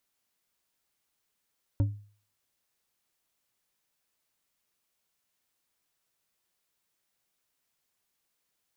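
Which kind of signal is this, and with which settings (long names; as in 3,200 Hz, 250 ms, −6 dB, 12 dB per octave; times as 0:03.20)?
struck glass bar, lowest mode 103 Hz, decay 0.44 s, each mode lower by 9 dB, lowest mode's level −19 dB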